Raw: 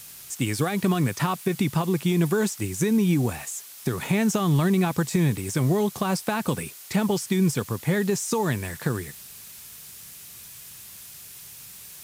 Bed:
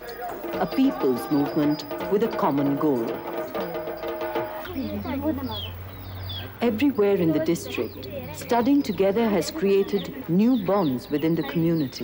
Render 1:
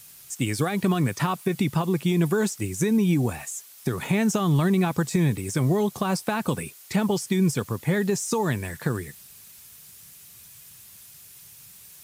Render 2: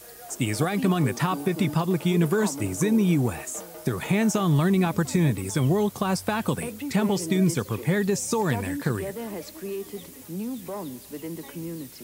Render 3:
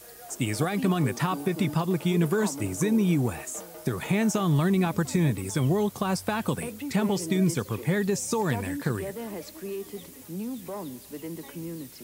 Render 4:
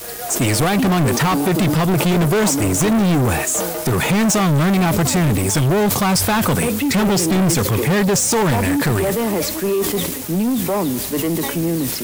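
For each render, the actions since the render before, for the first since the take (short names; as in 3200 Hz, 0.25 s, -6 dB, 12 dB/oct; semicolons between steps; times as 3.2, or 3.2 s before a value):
denoiser 6 dB, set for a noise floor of -44 dBFS
add bed -12.5 dB
gain -2 dB
sample leveller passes 5; sustainer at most 40 dB/s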